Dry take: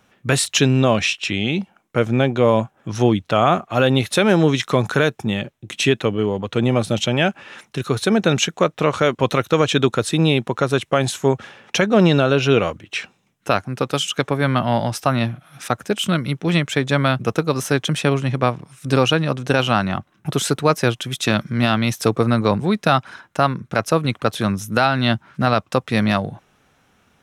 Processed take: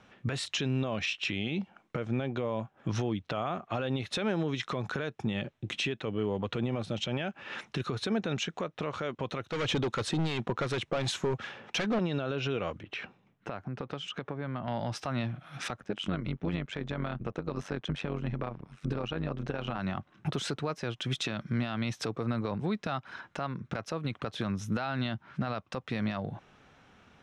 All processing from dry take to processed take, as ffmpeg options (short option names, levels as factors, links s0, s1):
-filter_complex "[0:a]asettb=1/sr,asplit=3[s0][s1][s2];[s0]atrim=end=9.414[s3];[s1]atrim=start=9.41:end=11.99,asetpts=PTS-STARTPTS,afade=t=in:d=0.004:c=qsin,afade=t=out:st=2.576:d=0.004:c=qsin,highshelf=f=11000:g=4,volume=8.91,asoftclip=hard,volume=0.112,acrossover=split=1100[s4][s5];[s4]aeval=exprs='val(0)*(1-0.5/2+0.5/2*cos(2*PI*2.7*n/s))':c=same[s6];[s5]aeval=exprs='val(0)*(1-0.5/2-0.5/2*cos(2*PI*2.7*n/s))':c=same[s7];[s6][s7]amix=inputs=2:normalize=0[s8];[s2]atrim=start=11.986[s9];[s3][s8]acrossfade=d=0.004:c1=hsin:c2=qsin[s10];[s10][s9]acrossfade=d=0.004:c1=qsin:c2=hsin,asettb=1/sr,asplit=3[s11][s12][s13];[s11]atrim=end=12.834[s14];[s12]atrim=start=12.83:end=14.68,asetpts=PTS-STARTPTS,afade=t=in:d=0.004:c=qsin,afade=t=out:st=1.846:d=0.004:c=qsin,lowpass=f=1500:p=1,acompressor=threshold=0.02:ratio=5:attack=3.2:release=140:knee=1:detection=peak[s15];[s13]atrim=start=14.676[s16];[s14][s15]acrossfade=d=0.004:c1=hsin:c2=qsin[s17];[s17][s16]acrossfade=d=0.004:c1=qsin:c2=hsin,asettb=1/sr,asplit=3[s18][s19][s20];[s18]atrim=end=15.804[s21];[s19]atrim=start=15.8:end=19.79,asetpts=PTS-STARTPTS,afade=t=in:d=0.004:c=qsin,afade=t=out:st=3.986:d=0.004:c=qsin,highshelf=f=3500:g=-11.5,tremolo=f=95:d=0.824[s22];[s20]atrim=start=19.786[s23];[s21][s22]acrossfade=d=0.004:c1=hsin:c2=qsin[s24];[s24][s23]acrossfade=d=0.004:c1=qsin:c2=hsin,lowpass=4700,acompressor=threshold=0.0447:ratio=6,alimiter=limit=0.0841:level=0:latency=1:release=34"